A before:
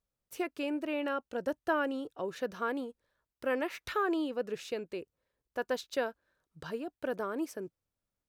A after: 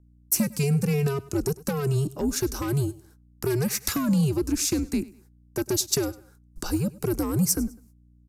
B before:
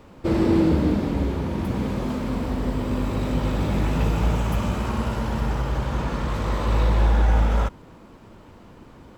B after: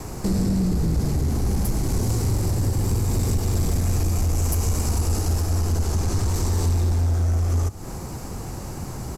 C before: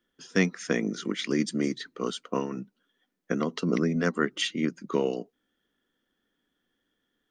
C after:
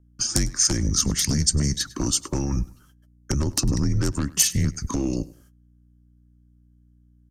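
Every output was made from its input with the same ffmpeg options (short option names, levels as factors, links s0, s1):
-filter_complex "[0:a]acompressor=threshold=0.0316:ratio=12,afreqshift=-140,aeval=exprs='0.158*sin(PI/2*3.55*val(0)/0.158)':c=same,asplit=2[s0][s1];[s1]aecho=0:1:101|202:0.0891|0.025[s2];[s0][s2]amix=inputs=2:normalize=0,agate=range=0.0316:threshold=0.002:ratio=16:detection=peak,highshelf=f=3800:g=-12,aexciter=amount=11.4:drive=6:freq=5000,aresample=32000,aresample=44100,aeval=exprs='val(0)+0.00178*(sin(2*PI*60*n/s)+sin(2*PI*2*60*n/s)/2+sin(2*PI*3*60*n/s)/3+sin(2*PI*4*60*n/s)/4+sin(2*PI*5*60*n/s)/5)':c=same,acrossover=split=410|3000[s3][s4][s5];[s4]acompressor=threshold=0.00891:ratio=2.5[s6];[s3][s6][s5]amix=inputs=3:normalize=0"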